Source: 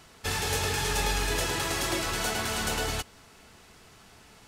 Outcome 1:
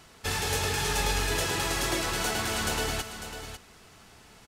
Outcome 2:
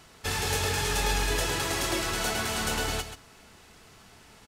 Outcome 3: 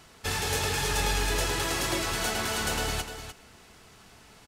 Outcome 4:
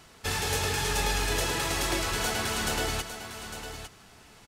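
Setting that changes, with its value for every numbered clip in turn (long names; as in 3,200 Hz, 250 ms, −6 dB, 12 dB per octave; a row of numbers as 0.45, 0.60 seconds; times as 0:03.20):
single-tap delay, delay time: 549, 132, 300, 854 milliseconds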